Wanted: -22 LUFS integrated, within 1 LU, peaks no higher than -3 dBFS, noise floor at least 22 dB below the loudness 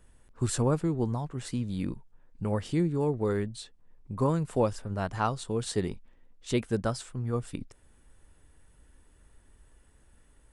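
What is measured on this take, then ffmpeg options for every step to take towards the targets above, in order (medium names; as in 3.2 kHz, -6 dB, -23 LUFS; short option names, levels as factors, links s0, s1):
loudness -31.0 LUFS; peak level -13.5 dBFS; loudness target -22.0 LUFS
-> -af "volume=2.82"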